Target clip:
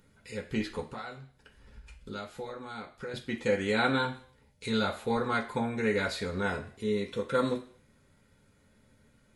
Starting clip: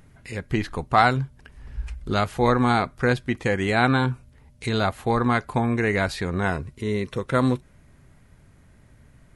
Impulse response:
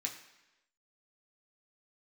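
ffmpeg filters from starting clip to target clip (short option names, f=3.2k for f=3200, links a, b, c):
-filter_complex "[0:a]asettb=1/sr,asplit=3[a][b][c];[a]atrim=end=0.884[d];[b]atrim=start=0.88:end=3.14,asetpts=PTS-STARTPTS,afade=t=in:d=0.004:c=qsin,afade=t=out:st=2.256:d=0.004:c=qsin,acompressor=threshold=-30dB:ratio=8[e];[c]atrim=start=3.136[f];[d][e]acrossfade=d=0.004:c1=hsin:c2=qsin[g];[g][f]acrossfade=d=0.004:c1=qsin:c2=hsin[h];[1:a]atrim=start_sample=2205,asetrate=83790,aresample=44100[i];[h][i]afir=irnorm=-1:irlink=0,volume=1dB"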